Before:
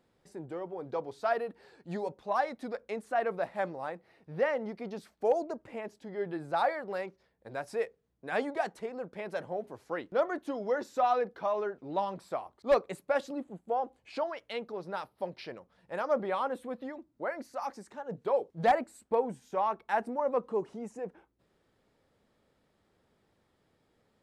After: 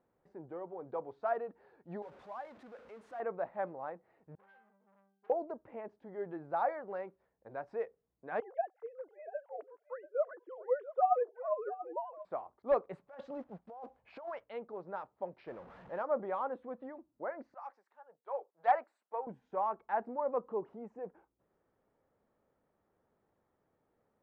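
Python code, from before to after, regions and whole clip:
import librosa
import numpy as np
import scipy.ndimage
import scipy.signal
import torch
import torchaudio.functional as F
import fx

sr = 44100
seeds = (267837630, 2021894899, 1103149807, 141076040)

y = fx.chain(x, sr, fx.zero_step(step_db=-33.0),
    fx.highpass(hz=53.0, slope=12),
    fx.pre_emphasis(coefficient=0.8), at=(2.02, 3.2))
y = fx.chain(y, sr, fx.tilt_shelf(db=-6.0, hz=780.0),
    fx.octave_resonator(note='G', decay_s=0.61),
    fx.transformer_sat(knee_hz=3000.0), at=(4.35, 5.3))
y = fx.chain(y, sr, fx.sine_speech(),
    fx.echo_single(ms=687, db=-15.0), at=(8.4, 12.25))
y = fx.chain(y, sr, fx.block_float(bits=5),
    fx.peak_eq(hz=320.0, db=-9.0, octaves=0.78),
    fx.over_compress(threshold_db=-40.0, ratio=-1.0), at=(12.93, 14.44))
y = fx.chain(y, sr, fx.zero_step(step_db=-42.5),
    fx.high_shelf(hz=8200.0, db=6.5), at=(15.47, 16.03))
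y = fx.chain(y, sr, fx.highpass(hz=770.0, slope=12),
    fx.band_widen(depth_pct=70), at=(17.54, 19.27))
y = scipy.signal.sosfilt(scipy.signal.butter(2, 1100.0, 'lowpass', fs=sr, output='sos'), y)
y = fx.low_shelf(y, sr, hz=480.0, db=-9.0)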